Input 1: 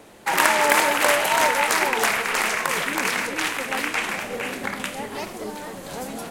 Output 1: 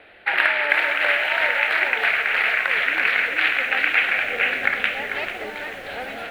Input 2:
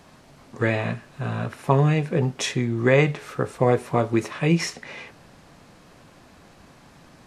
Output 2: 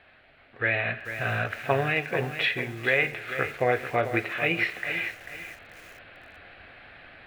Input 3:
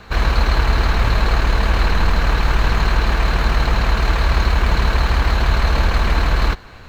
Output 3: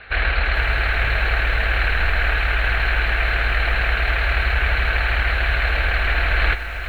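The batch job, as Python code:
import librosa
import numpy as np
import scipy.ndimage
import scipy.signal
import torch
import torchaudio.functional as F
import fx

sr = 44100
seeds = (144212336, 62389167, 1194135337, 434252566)

y = fx.curve_eq(x, sr, hz=(100.0, 160.0, 730.0, 1000.0, 1500.0, 2500.0, 4200.0, 6200.0, 10000.0), db=(0, -11, 5, -6, 11, 12, 0, -30, -18))
y = fx.rider(y, sr, range_db=5, speed_s=0.5)
y = fx.rev_spring(y, sr, rt60_s=1.3, pass_ms=(44, 54), chirp_ms=30, drr_db=17.0)
y = fx.echo_crushed(y, sr, ms=442, feedback_pct=35, bits=6, wet_db=-9.5)
y = y * 10.0 ** (-6.5 / 20.0)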